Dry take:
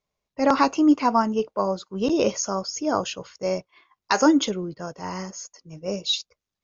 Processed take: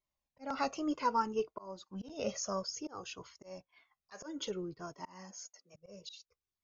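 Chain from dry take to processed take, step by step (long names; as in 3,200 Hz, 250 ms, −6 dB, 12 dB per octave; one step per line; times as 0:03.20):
0:04.95–0:05.74: high-pass filter 110 Hz → 300 Hz 24 dB per octave
volume swells 345 ms
flanger whose copies keep moving one way falling 0.6 Hz
level −5.5 dB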